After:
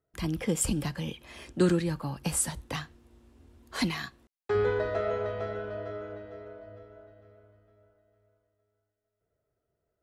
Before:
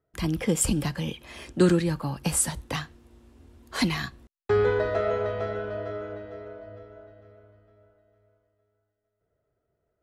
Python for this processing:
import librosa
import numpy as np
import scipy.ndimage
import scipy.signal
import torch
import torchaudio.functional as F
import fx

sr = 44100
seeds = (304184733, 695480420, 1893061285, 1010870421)

y = fx.low_shelf(x, sr, hz=170.0, db=-10.0, at=(3.91, 4.55))
y = y * 10.0 ** (-4.0 / 20.0)